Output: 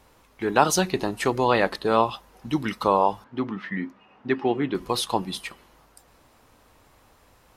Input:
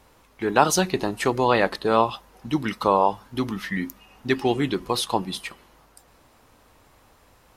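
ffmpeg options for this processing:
-filter_complex "[0:a]asettb=1/sr,asplit=3[a][b][c];[a]atrim=end=3.244[d];[b]atrim=start=3.24:end=4.75,asetpts=PTS-STARTPTS,afade=t=in:d=0.004:c=qsin,afade=t=out:st=1.506:d=0.004:c=qsin,highpass=150,lowpass=2.2k[e];[c]atrim=start=4.746[f];[d][e]acrossfade=d=0.004:c1=hsin:c2=qsin[g];[g][f]acrossfade=d=0.004:c1=qsin:c2=hsin,volume=-1dB"

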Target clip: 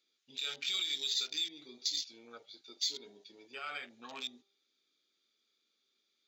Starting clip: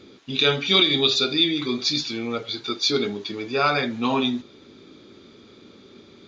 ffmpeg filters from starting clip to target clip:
-af "bandreject=f=1k:w=7.1,afwtdn=0.0355,alimiter=limit=-16.5dB:level=0:latency=1:release=131,aderivative,bandreject=f=198:t=h:w=4,bandreject=f=396:t=h:w=4,bandreject=f=594:t=h:w=4,bandreject=f=792:t=h:w=4,bandreject=f=990:t=h:w=4,bandreject=f=1.188k:t=h:w=4,volume=-1dB"

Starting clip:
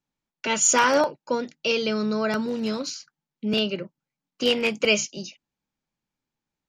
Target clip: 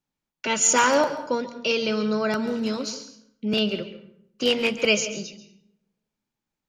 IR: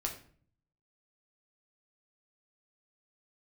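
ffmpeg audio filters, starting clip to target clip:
-filter_complex "[0:a]asplit=2[a][b];[1:a]atrim=start_sample=2205,asetrate=29547,aresample=44100,adelay=136[c];[b][c]afir=irnorm=-1:irlink=0,volume=-15.5dB[d];[a][d]amix=inputs=2:normalize=0"

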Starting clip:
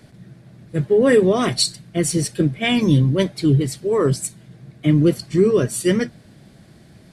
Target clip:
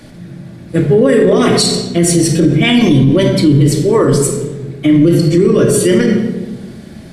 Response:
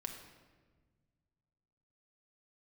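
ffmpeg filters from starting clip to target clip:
-filter_complex "[1:a]atrim=start_sample=2205,asetrate=61740,aresample=44100[a];[0:a][a]afir=irnorm=-1:irlink=0,alimiter=level_in=18dB:limit=-1dB:release=50:level=0:latency=1,volume=-1dB"

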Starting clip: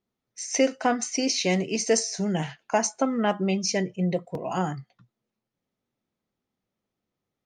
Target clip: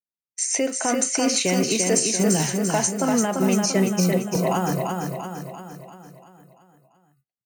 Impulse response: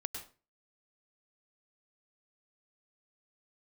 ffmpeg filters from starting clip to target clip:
-filter_complex "[0:a]agate=range=-33dB:threshold=-44dB:ratio=3:detection=peak,highshelf=f=5.4k:g=-5,alimiter=limit=-22dB:level=0:latency=1:release=121,acrossover=split=130|780[a][b][c];[a]acrusher=samples=33:mix=1:aa=0.000001[d];[d][b][c]amix=inputs=3:normalize=0,aexciter=amount=7.7:drive=2.6:freq=7.6k,asplit=2[e][f];[f]aecho=0:1:342|684|1026|1368|1710|2052|2394:0.631|0.334|0.177|0.0939|0.0498|0.0264|0.014[g];[e][g]amix=inputs=2:normalize=0,volume=8dB"

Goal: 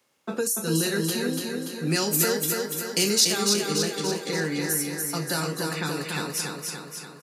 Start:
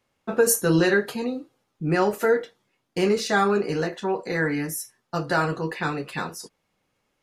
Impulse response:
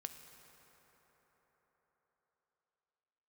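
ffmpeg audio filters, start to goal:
-filter_complex "[0:a]asplit=2[a][b];[b]asuperstop=centerf=710:order=4:qfactor=6[c];[1:a]atrim=start_sample=2205[d];[c][d]afir=irnorm=-1:irlink=0,volume=-6.5dB[e];[a][e]amix=inputs=2:normalize=0,acrossover=split=260|3000[f][g][h];[g]acompressor=threshold=-37dB:ratio=2.5[i];[f][i][h]amix=inputs=3:normalize=0,highpass=130,bass=f=250:g=-4,treble=f=4k:g=7,alimiter=limit=-16.5dB:level=0:latency=1:release=234,asettb=1/sr,asplit=3[j][k][l];[j]atrim=end=1.874[m];[k]atrim=start=1.87:end=3.25,asetpts=PTS-STARTPTS,afade=t=in:d=0.004:c=qsin,afade=t=out:st=1.376:d=0.004:c=qsin,highshelf=f=2.5k:g=10[n];[l]atrim=start=3.246[o];[m][n]acrossfade=d=0.004:c1=hsin:c2=qsin[p];[p][o]acrossfade=d=0.004:c1=qsin:c2=hsin,aecho=1:1:289|578|867|1156|1445|1734|2023|2312:0.631|0.36|0.205|0.117|0.0666|0.038|0.0216|0.0123,volume=1dB"

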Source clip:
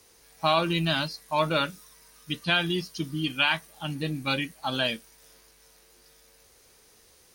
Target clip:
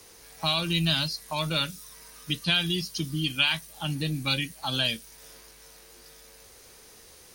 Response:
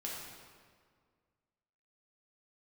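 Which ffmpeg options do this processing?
-filter_complex "[0:a]acrossover=split=150|3000[a][b][c];[b]acompressor=threshold=-42dB:ratio=3[d];[a][d][c]amix=inputs=3:normalize=0,volume=6.5dB"

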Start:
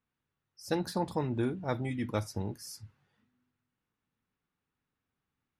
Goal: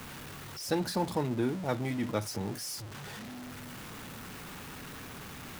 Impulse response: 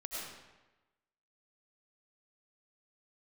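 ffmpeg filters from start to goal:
-filter_complex "[0:a]aeval=exprs='val(0)+0.5*0.0141*sgn(val(0))':c=same,acrossover=split=110|900[a][b][c];[a]acompressor=threshold=-53dB:ratio=6[d];[d][b][c]amix=inputs=3:normalize=0"

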